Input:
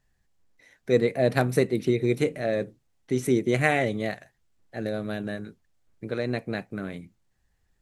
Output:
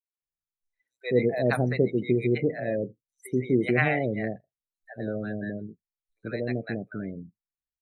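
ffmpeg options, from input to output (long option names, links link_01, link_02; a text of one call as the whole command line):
ffmpeg -i in.wav -filter_complex "[0:a]acrossover=split=690|6000[link_01][link_02][link_03];[link_02]adelay=140[link_04];[link_01]adelay=220[link_05];[link_05][link_04][link_03]amix=inputs=3:normalize=0,afftdn=noise_reduction=32:noise_floor=-36" out.wav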